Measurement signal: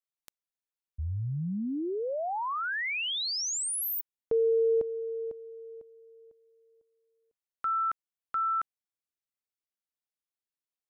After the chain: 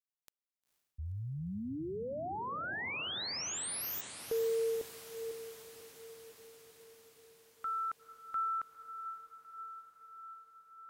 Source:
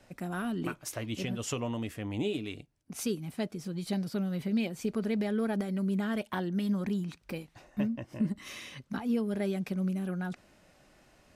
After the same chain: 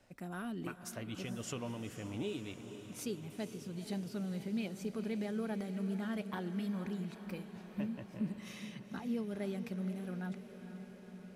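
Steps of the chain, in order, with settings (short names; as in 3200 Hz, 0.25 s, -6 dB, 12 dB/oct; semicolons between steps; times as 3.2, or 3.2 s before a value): diffused feedback echo 0.479 s, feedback 71%, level -11 dB; gain -7.5 dB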